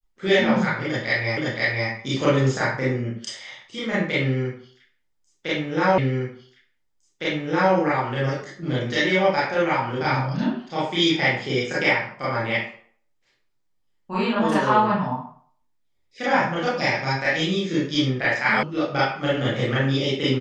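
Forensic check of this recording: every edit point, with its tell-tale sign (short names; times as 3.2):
1.37 repeat of the last 0.52 s
5.98 repeat of the last 1.76 s
18.63 sound cut off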